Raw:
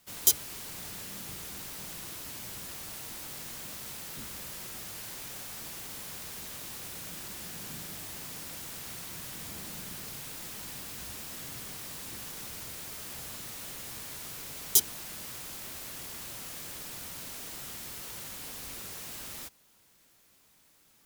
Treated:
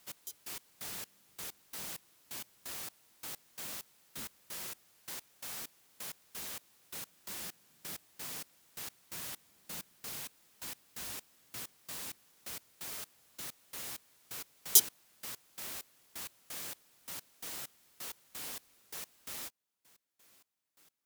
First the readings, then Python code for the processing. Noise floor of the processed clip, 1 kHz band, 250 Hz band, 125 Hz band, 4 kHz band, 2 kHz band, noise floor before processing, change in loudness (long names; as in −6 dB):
−71 dBFS, −4.5 dB, −8.0 dB, −11.0 dB, −4.0 dB, −4.5 dB, −64 dBFS, −3.5 dB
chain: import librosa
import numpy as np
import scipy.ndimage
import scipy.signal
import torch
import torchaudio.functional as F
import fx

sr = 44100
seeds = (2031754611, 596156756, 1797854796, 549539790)

y = fx.low_shelf(x, sr, hz=180.0, db=-10.5)
y = fx.step_gate(y, sr, bpm=130, pattern='x...x..x', floor_db=-24.0, edge_ms=4.5)